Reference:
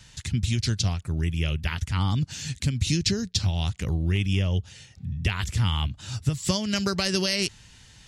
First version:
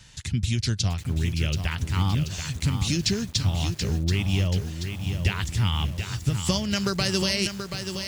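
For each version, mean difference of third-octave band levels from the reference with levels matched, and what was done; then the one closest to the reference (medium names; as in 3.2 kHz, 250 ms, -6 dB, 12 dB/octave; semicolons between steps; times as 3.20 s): 6.5 dB: bit-crushed delay 731 ms, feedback 55%, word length 7-bit, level -7 dB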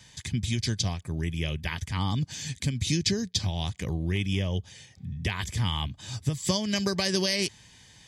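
1.5 dB: comb of notches 1.4 kHz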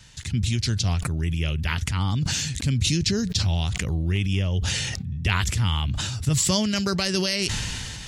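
4.5 dB: decay stretcher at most 22 dB/s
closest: second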